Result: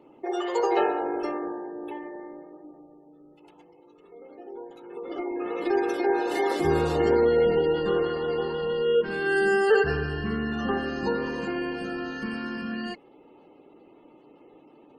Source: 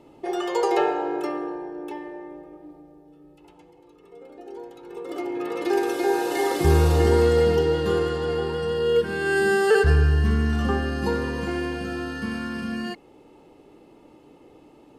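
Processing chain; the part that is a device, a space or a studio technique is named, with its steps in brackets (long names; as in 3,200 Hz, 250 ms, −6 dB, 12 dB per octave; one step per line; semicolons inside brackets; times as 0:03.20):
noise-suppressed video call (high-pass filter 180 Hz 12 dB per octave; gate on every frequency bin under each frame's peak −30 dB strong; level −1.5 dB; Opus 16 kbit/s 48,000 Hz)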